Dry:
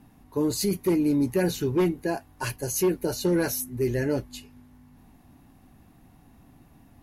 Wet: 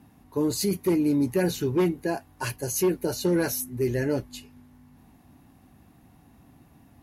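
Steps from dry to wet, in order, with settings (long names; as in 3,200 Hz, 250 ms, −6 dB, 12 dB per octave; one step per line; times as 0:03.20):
high-pass filter 51 Hz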